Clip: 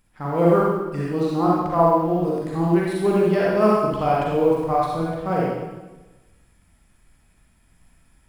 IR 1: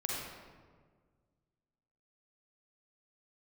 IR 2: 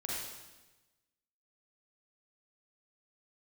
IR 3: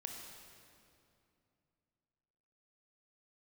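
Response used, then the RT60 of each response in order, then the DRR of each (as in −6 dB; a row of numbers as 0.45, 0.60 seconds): 2; 1.6, 1.1, 2.6 seconds; −4.0, −5.5, 1.0 decibels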